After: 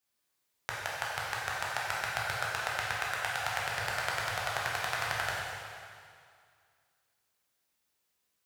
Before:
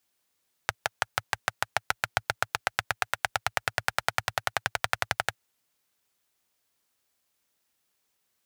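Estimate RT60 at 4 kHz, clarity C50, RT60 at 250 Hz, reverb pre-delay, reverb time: 2.1 s, -1.5 dB, 2.3 s, 6 ms, 2.2 s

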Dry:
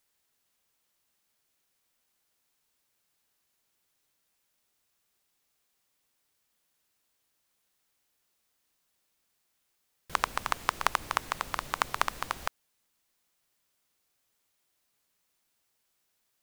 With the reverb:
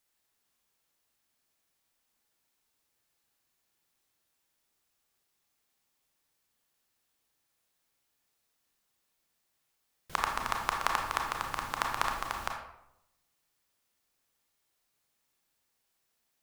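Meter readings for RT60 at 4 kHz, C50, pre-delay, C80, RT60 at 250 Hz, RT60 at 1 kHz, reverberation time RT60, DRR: 0.50 s, 4.5 dB, 27 ms, 7.5 dB, 0.90 s, 0.75 s, 0.80 s, 1.0 dB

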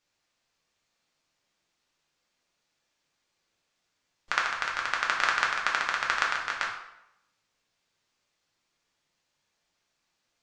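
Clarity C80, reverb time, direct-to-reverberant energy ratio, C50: 8.0 dB, 0.85 s, -2.5 dB, 5.0 dB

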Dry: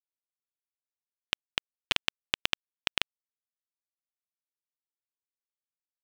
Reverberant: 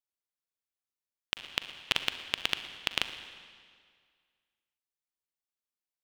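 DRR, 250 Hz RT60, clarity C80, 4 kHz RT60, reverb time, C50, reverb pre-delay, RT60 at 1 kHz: 9.0 dB, 1.9 s, 11.0 dB, 1.8 s, 2.0 s, 9.5 dB, 39 ms, 1.9 s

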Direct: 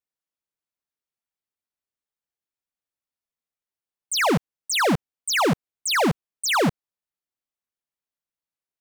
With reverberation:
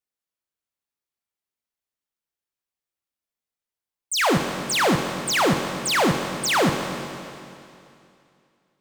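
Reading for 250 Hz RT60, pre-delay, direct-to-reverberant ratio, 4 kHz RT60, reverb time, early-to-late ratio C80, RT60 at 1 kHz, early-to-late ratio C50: 2.6 s, 21 ms, 4.5 dB, 2.6 s, 2.6 s, 6.5 dB, 2.6 s, 5.5 dB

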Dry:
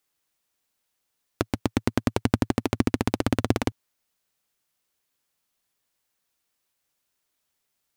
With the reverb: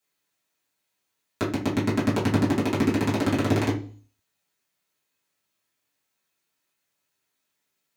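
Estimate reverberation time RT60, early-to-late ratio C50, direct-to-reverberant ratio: 0.40 s, 9.0 dB, -9.0 dB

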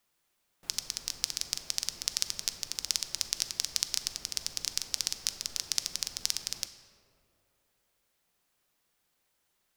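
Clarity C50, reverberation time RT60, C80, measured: 11.0 dB, 2.9 s, 12.0 dB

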